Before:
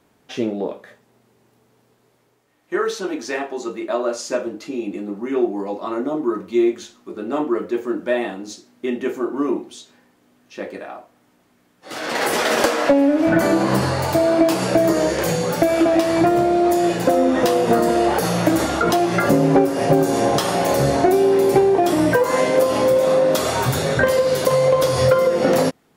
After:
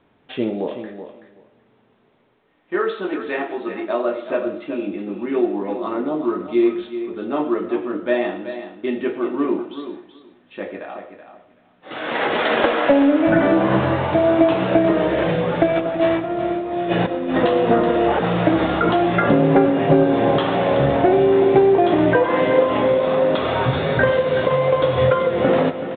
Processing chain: 15.66–17.38 s: compressor with a negative ratio -20 dBFS, ratio -0.5; feedback delay 378 ms, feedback 15%, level -10.5 dB; reverberation RT60 0.50 s, pre-delay 50 ms, DRR 12 dB; µ-law 64 kbps 8 kHz

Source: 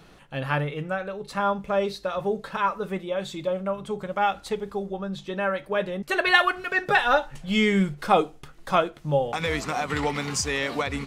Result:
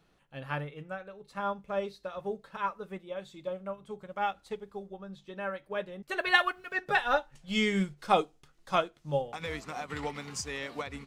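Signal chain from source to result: 6.20–6.75 s: word length cut 10-bit, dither none; 7.32–9.22 s: peaking EQ 5.8 kHz +6 dB 1.7 oct; upward expansion 1.5:1, over -38 dBFS; trim -4.5 dB

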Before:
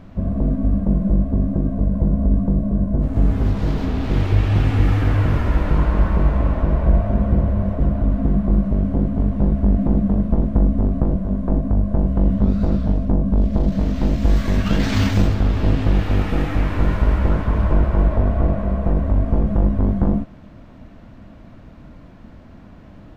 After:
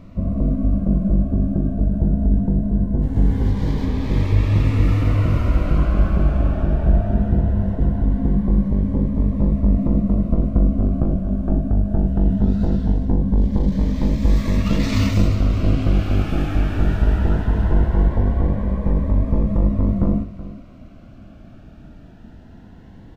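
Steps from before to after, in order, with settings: on a send: delay 376 ms -15.5 dB; on the sum: Shepard-style phaser rising 0.2 Hz

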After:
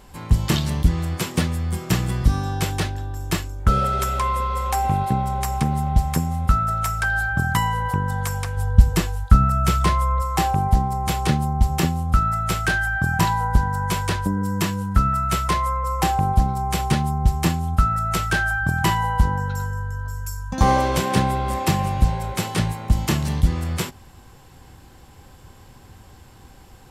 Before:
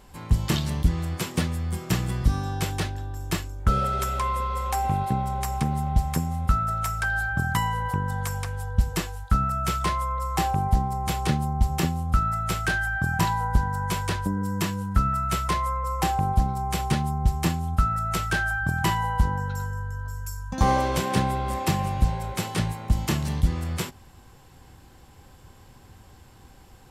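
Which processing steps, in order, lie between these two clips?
8.57–10.22 s: bass shelf 270 Hz +6 dB; trim +4 dB

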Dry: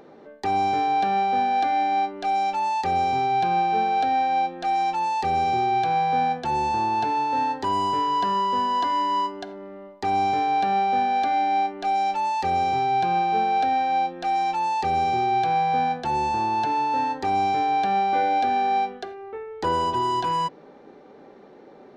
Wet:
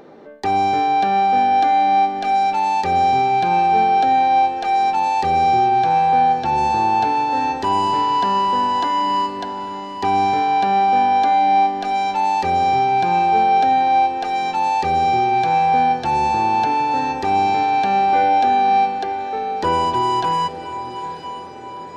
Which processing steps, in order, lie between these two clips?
5.68–6.58 s: distance through air 72 m; on a send: echo that smears into a reverb 887 ms, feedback 53%, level -11 dB; on the sum: trim +5 dB

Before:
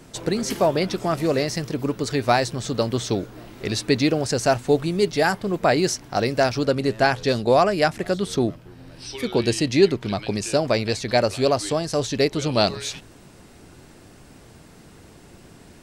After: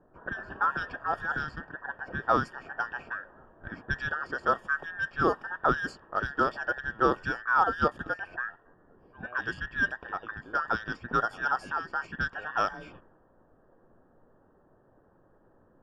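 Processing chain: every band turned upside down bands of 2 kHz; boxcar filter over 22 samples; level-controlled noise filter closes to 590 Hz, open at -25.5 dBFS

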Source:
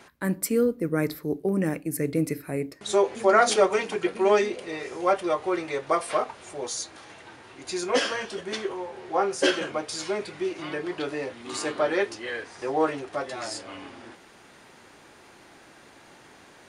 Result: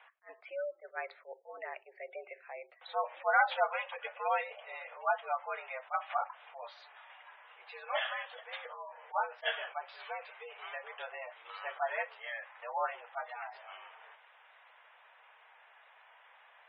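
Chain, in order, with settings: mistuned SSB +99 Hz 580–3300 Hz; spectral gate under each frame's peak -20 dB strong; attacks held to a fixed rise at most 410 dB/s; trim -6.5 dB

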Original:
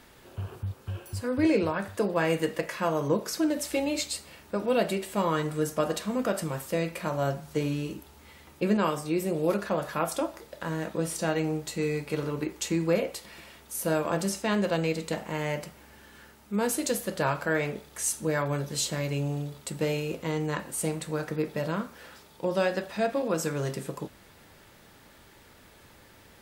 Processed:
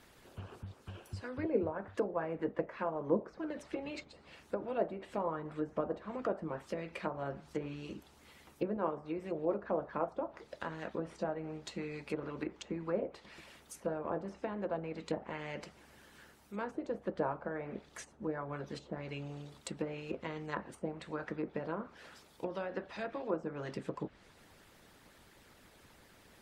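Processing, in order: harmonic-percussive split harmonic -13 dB; low-pass that closes with the level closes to 870 Hz, closed at -30 dBFS; trim -2 dB

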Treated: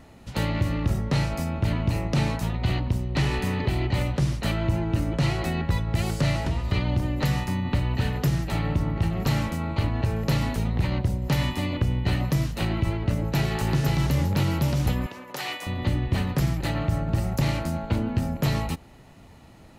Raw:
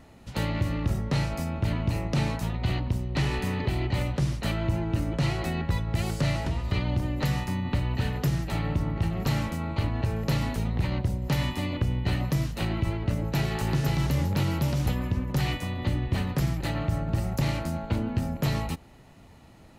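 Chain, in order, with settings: 15.06–15.67 s: high-pass 550 Hz 12 dB/octave; trim +2.5 dB

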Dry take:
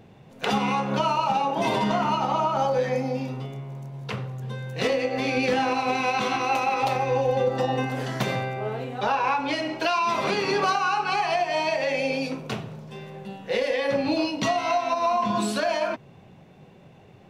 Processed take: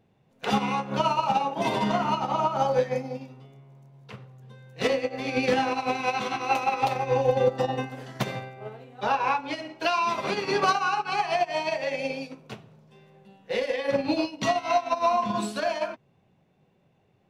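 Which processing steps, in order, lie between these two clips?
upward expansion 2.5:1, over -32 dBFS; trim +3 dB

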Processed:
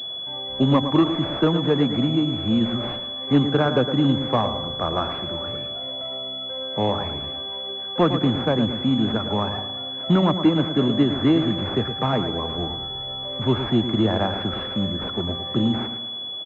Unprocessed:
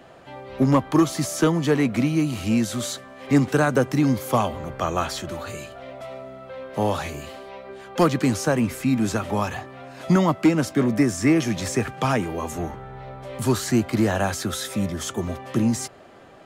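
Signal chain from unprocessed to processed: feedback delay 111 ms, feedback 43%, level -9 dB; class-D stage that switches slowly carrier 3.4 kHz

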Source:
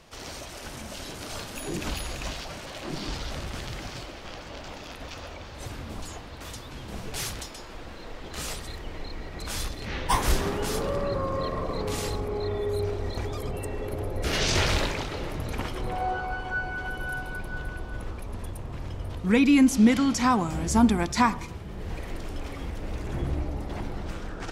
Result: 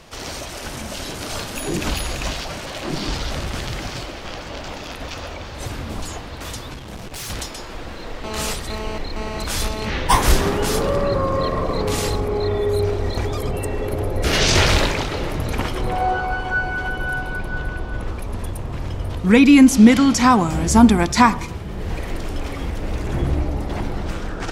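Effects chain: 6.74–7.30 s: valve stage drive 37 dB, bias 0.65; 8.24–9.90 s: mobile phone buzz -39 dBFS; 16.88–18.08 s: treble shelf 7.1 kHz -8 dB; trim +8.5 dB

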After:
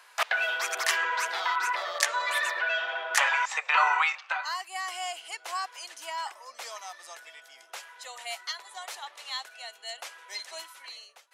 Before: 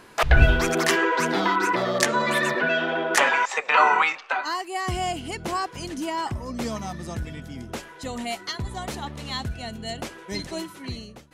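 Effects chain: Bessel high-pass 1 kHz, order 6; trim -2.5 dB

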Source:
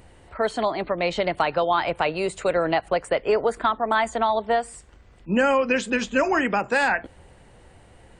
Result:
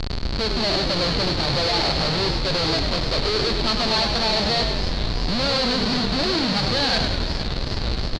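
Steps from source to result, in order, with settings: bass shelf 120 Hz +7.5 dB; harmonic-percussive split percussive -14 dB; tilt EQ -3 dB/octave; compression, threshold -25 dBFS, peak gain reduction 12.5 dB; Schmitt trigger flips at -44 dBFS; resonant low-pass 4.4 kHz, resonance Q 10; frequency-shifting echo 99 ms, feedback 56%, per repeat -46 Hz, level -6 dB; modulated delay 462 ms, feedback 74%, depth 216 cents, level -15 dB; trim +5 dB

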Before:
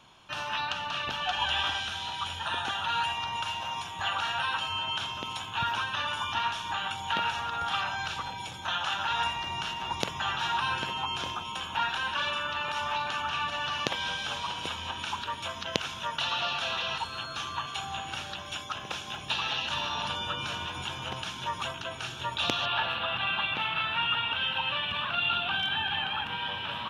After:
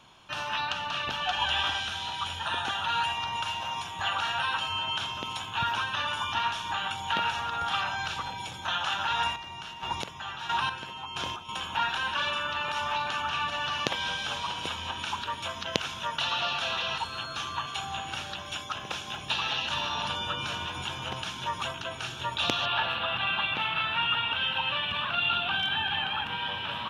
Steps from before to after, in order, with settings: 9.16–11.49 s: square tremolo 1.5 Hz, depth 60%, duty 30%; trim +1 dB

